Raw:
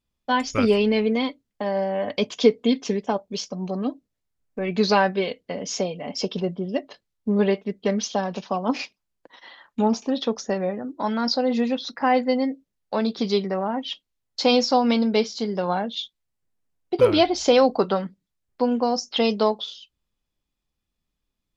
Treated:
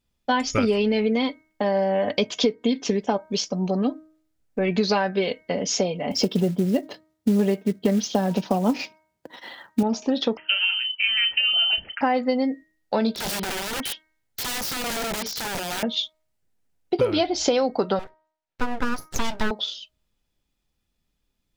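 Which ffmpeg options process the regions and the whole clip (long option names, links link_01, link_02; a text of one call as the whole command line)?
ffmpeg -i in.wav -filter_complex "[0:a]asettb=1/sr,asplit=3[link_01][link_02][link_03];[link_01]atrim=end=6.114[link_04];[link_02]atrim=start=6.11:end=9.83,asetpts=PTS-STARTPTS,afade=type=in:duration=0.004:curve=qsin,afade=type=out:start_time=3.716:duration=0.004:curve=qsin,highpass=70,equalizer=frequency=140:width=0.39:gain=8.5,acrusher=bits=6:mode=log:mix=0:aa=0.000001[link_05];[link_03]atrim=start=9.826[link_06];[link_04][link_05]acrossfade=duration=0.004:curve1=hsin:curve2=qsin[link_07];[link_07][link_06]acrossfade=duration=0.004:curve1=qsin:curve2=hsin,asettb=1/sr,asplit=3[link_08][link_09][link_10];[link_08]atrim=end=10.374[link_11];[link_09]atrim=start=10.37:end=12.01,asetpts=PTS-STARTPTS,afade=type=in:duration=0.004:curve=qsin,afade=type=out:start_time=1.636:duration=0.004:curve=qsin,asplit=2[link_12][link_13];[link_13]adelay=34,volume=-12dB[link_14];[link_12][link_14]amix=inputs=2:normalize=0,atrim=end_sample=72324,lowpass=frequency=2800:width_type=q:width=0.5098,lowpass=frequency=2800:width_type=q:width=0.6013,lowpass=frequency=2800:width_type=q:width=0.9,lowpass=frequency=2800:width_type=q:width=2.563,afreqshift=-3300[link_15];[link_10]atrim=start=12.006[link_16];[link_11][link_15]acrossfade=duration=0.004:curve1=hsin:curve2=qsin[link_17];[link_17][link_16]acrossfade=duration=0.004:curve1=qsin:curve2=hsin,asettb=1/sr,asplit=3[link_18][link_19][link_20];[link_18]atrim=end=13.154[link_21];[link_19]atrim=start=13.15:end=15.83,asetpts=PTS-STARTPTS,afade=type=in:duration=0.004:curve=qsin,afade=type=out:start_time=2.676:duration=0.004:curve=qsin,acompressor=threshold=-25dB:ratio=8:attack=3.2:release=140:knee=1:detection=peak,aeval=exprs='(mod(26.6*val(0)+1,2)-1)/26.6':channel_layout=same[link_22];[link_20]atrim=start=15.826[link_23];[link_21][link_22]acrossfade=duration=0.004:curve1=hsin:curve2=qsin[link_24];[link_24][link_23]acrossfade=duration=0.004:curve1=qsin:curve2=hsin,asettb=1/sr,asplit=3[link_25][link_26][link_27];[link_25]atrim=end=17.994[link_28];[link_26]atrim=start=17.99:end=19.51,asetpts=PTS-STARTPTS,afade=type=in:duration=0.004:curve=qsin,afade=type=out:start_time=1.516:duration=0.004:curve=qsin,highpass=420,lowpass=2900,aeval=exprs='abs(val(0))':channel_layout=same[link_29];[link_27]atrim=start=19.506[link_30];[link_28][link_29]acrossfade=duration=0.004:curve1=hsin:curve2=qsin[link_31];[link_31][link_30]acrossfade=duration=0.004:curve1=qsin:curve2=hsin,bandreject=frequency=1100:width=10,bandreject=frequency=313.6:width_type=h:width=4,bandreject=frequency=627.2:width_type=h:width=4,bandreject=frequency=940.8:width_type=h:width=4,bandreject=frequency=1254.4:width_type=h:width=4,bandreject=frequency=1568:width_type=h:width=4,bandreject=frequency=1881.6:width_type=h:width=4,bandreject=frequency=2195.2:width_type=h:width=4,acompressor=threshold=-23dB:ratio=6,volume=5dB" out.wav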